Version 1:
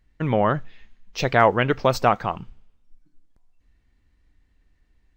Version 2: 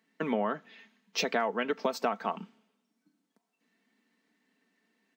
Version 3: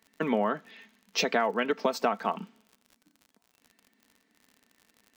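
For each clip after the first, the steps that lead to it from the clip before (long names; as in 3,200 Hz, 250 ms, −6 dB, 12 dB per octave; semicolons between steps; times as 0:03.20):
comb filter 4.5 ms, depth 47%; downward compressor 16 to 1, threshold −25 dBFS, peak gain reduction 16 dB; Butterworth high-pass 190 Hz 48 dB per octave
surface crackle 57 per second −46 dBFS; level +3 dB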